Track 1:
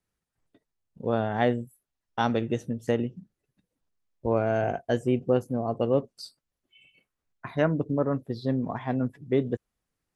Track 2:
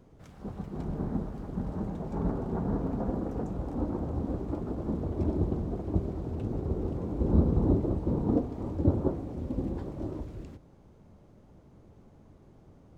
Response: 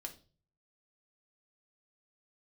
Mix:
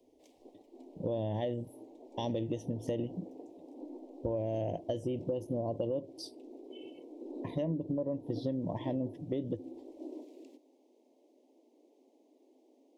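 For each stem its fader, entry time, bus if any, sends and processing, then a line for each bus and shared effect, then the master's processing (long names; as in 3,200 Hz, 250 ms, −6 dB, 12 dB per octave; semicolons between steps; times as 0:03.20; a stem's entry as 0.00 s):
0.0 dB, 0.00 s, send −15.5 dB, high-shelf EQ 5,100 Hz −7.5 dB; brickwall limiter −18.5 dBFS, peak gain reduction 7 dB; EQ curve with evenly spaced ripples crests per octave 1.2, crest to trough 10 dB
−5.5 dB, 0.00 s, send −10 dB, Butterworth high-pass 250 Hz 96 dB per octave; automatic ducking −11 dB, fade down 0.25 s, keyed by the first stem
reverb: on, RT60 0.40 s, pre-delay 3 ms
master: Butterworth band-reject 1,400 Hz, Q 0.76; downward compressor 10 to 1, threshold −30 dBFS, peak gain reduction 11 dB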